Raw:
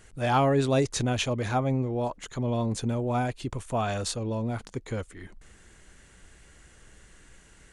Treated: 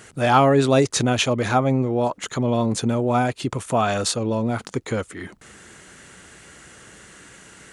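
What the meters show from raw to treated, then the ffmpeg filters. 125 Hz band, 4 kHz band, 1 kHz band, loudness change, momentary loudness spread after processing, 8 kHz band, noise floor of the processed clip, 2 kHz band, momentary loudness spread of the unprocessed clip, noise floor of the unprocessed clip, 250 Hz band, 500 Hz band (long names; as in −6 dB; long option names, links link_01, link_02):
+4.5 dB, +8.0 dB, +8.0 dB, +7.0 dB, 12 LU, +8.5 dB, −52 dBFS, +8.5 dB, 12 LU, −55 dBFS, +7.5 dB, +7.5 dB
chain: -filter_complex "[0:a]highpass=130,equalizer=frequency=1300:width=7:gain=4,asplit=2[link_01][link_02];[link_02]acompressor=threshold=-36dB:ratio=6,volume=-1.5dB[link_03];[link_01][link_03]amix=inputs=2:normalize=0,volume=6dB"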